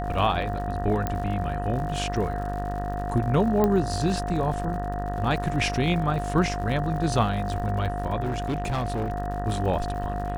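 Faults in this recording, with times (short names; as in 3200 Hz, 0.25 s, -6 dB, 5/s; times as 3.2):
buzz 50 Hz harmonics 38 -31 dBFS
crackle 96/s -35 dBFS
tone 710 Hz -31 dBFS
1.07 pop -13 dBFS
3.64 pop -11 dBFS
8.2–9.12 clipped -23 dBFS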